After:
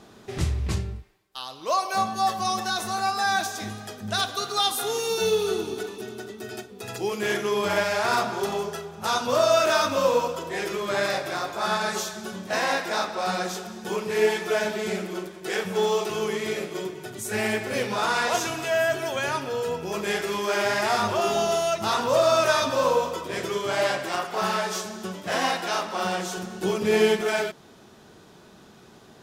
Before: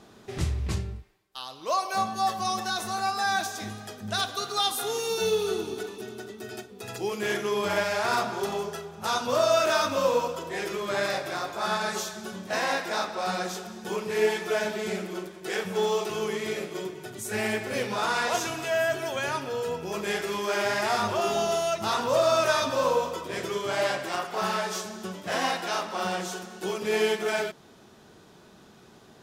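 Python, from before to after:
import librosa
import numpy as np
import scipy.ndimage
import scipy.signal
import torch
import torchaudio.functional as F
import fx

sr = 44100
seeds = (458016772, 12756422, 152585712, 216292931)

y = fx.low_shelf(x, sr, hz=220.0, db=12.0, at=(26.37, 27.21))
y = y * 10.0 ** (2.5 / 20.0)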